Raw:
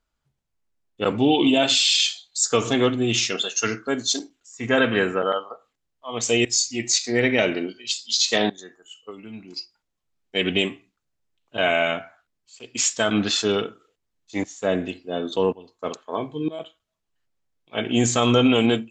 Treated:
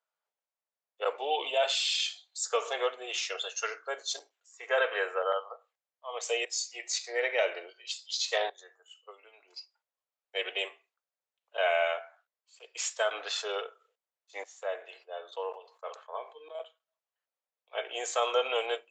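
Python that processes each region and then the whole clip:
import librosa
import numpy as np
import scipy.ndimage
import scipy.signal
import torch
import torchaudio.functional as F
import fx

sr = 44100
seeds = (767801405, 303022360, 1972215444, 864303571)

y = fx.chain(x, sr, fx.highpass(hz=880.0, slope=6),
    fx.high_shelf(hz=3000.0, db=-8.0),
    fx.sustainer(db_per_s=120.0), at=(14.63, 16.55))
y = scipy.signal.sosfilt(scipy.signal.butter(8, 480.0, 'highpass', fs=sr, output='sos'), y)
y = fx.high_shelf(y, sr, hz=2500.0, db=-9.0)
y = F.gain(torch.from_numpy(y), -4.5).numpy()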